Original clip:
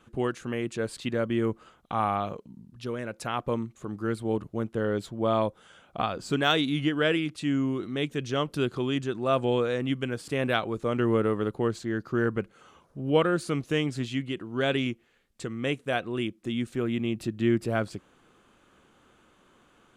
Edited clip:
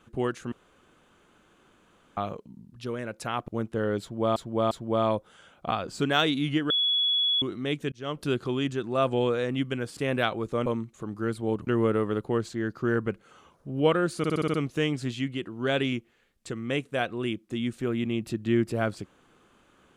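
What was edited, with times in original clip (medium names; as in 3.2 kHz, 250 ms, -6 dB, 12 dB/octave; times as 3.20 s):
0.52–2.17 s: room tone
3.48–4.49 s: move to 10.97 s
5.02–5.37 s: loop, 3 plays
7.01–7.73 s: bleep 3.38 kHz -21.5 dBFS
8.23–8.54 s: fade in
13.48 s: stutter 0.06 s, 7 plays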